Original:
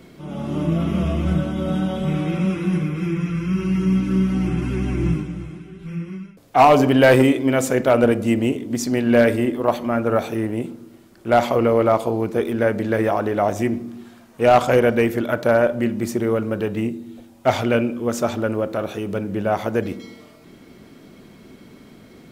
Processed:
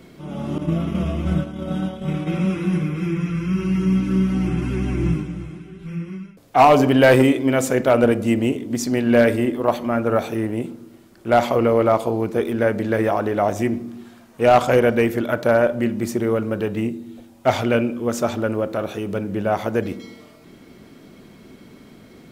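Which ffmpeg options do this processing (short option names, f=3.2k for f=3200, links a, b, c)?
-filter_complex "[0:a]asettb=1/sr,asplit=3[a][b][c];[a]atrim=end=0.584[d];[b]atrim=start=0.58:end=2.27,asetpts=PTS-STARTPTS,afade=t=in:d=0.004:c=qsin,afade=t=out:st=1.686:d=0.004:c=qsin,agate=range=-33dB:threshold=-19dB:ratio=3:release=100:detection=peak[e];[c]atrim=start=2.266[f];[d][e]acrossfade=d=0.004:c1=hsin:c2=qsin[g];[g][f]acrossfade=d=0.004:c1=qsin:c2=hsin"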